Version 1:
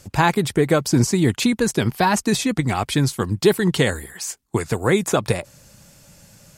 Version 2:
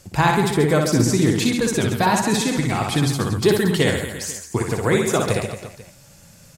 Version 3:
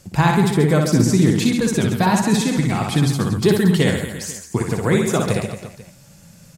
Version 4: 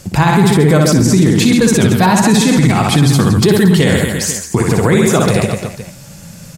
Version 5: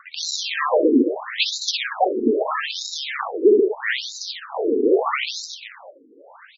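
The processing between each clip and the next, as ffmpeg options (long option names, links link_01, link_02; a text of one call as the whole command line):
ffmpeg -i in.wav -af "flanger=delay=5.4:depth=7.9:regen=78:speed=0.7:shape=sinusoidal,aecho=1:1:60|135|228.8|345.9|492.4:0.631|0.398|0.251|0.158|0.1,volume=3dB" out.wav
ffmpeg -i in.wav -af "equalizer=frequency=180:width_type=o:width=0.89:gain=7,volume=-1dB" out.wav
ffmpeg -i in.wav -af "alimiter=level_in=13dB:limit=-1dB:release=50:level=0:latency=1,volume=-1dB" out.wav
ffmpeg -i in.wav -af "acrusher=samples=17:mix=1:aa=0.000001:lfo=1:lforange=27.2:lforate=0.46,afftfilt=real='re*between(b*sr/1024,330*pow(5300/330,0.5+0.5*sin(2*PI*0.78*pts/sr))/1.41,330*pow(5300/330,0.5+0.5*sin(2*PI*0.78*pts/sr))*1.41)':imag='im*between(b*sr/1024,330*pow(5300/330,0.5+0.5*sin(2*PI*0.78*pts/sr))/1.41,330*pow(5300/330,0.5+0.5*sin(2*PI*0.78*pts/sr))*1.41)':win_size=1024:overlap=0.75" out.wav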